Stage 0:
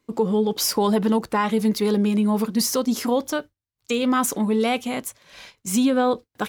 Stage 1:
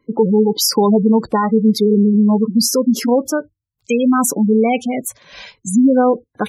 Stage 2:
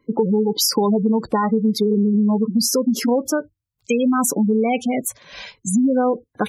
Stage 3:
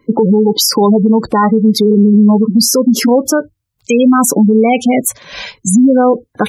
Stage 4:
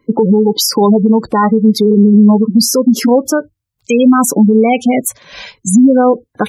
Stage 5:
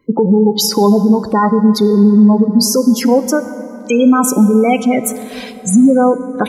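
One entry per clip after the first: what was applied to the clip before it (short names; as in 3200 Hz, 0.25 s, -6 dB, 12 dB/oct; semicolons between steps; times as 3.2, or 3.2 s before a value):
spectral gate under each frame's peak -15 dB strong; dynamic EQ 1300 Hz, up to -4 dB, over -36 dBFS, Q 1; gain +8 dB
compressor 4:1, threshold -15 dBFS, peak gain reduction 6.5 dB
maximiser +11.5 dB; gain -1.5 dB
upward expander 1.5:1, over -17 dBFS; gain +1.5 dB
plate-style reverb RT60 3.8 s, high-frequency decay 0.4×, DRR 11.5 dB; gain -1.5 dB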